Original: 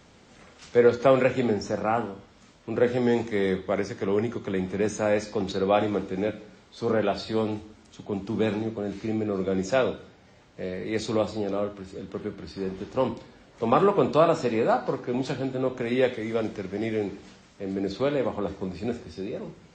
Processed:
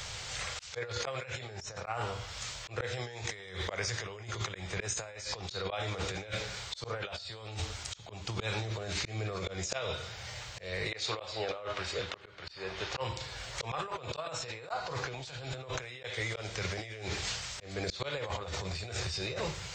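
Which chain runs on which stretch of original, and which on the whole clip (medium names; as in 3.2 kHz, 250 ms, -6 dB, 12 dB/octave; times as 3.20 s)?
10.92–13.01 s: low-pass 6.3 kHz + tone controls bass -11 dB, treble -6 dB
whole clip: FFT filter 120 Hz 0 dB, 240 Hz -25 dB, 510 Hz -7 dB, 4.3 kHz +7 dB; slow attack 490 ms; compressor with a negative ratio -46 dBFS, ratio -1; trim +7.5 dB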